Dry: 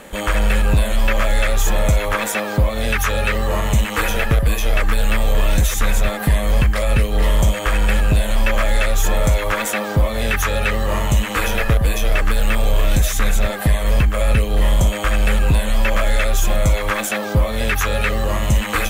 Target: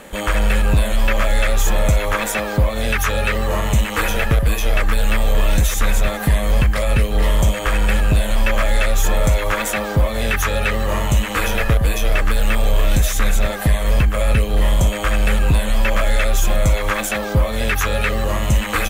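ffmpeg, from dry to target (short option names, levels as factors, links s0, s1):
-af "aecho=1:1:491:0.0944"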